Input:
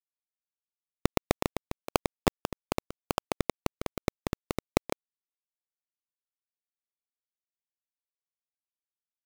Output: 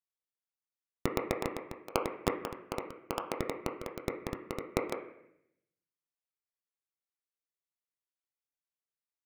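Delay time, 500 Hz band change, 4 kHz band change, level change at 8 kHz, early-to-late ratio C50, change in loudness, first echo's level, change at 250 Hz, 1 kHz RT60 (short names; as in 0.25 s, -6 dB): none, -2.5 dB, -6.5 dB, -6.5 dB, 7.5 dB, -4.0 dB, none, -5.0 dB, 0.70 s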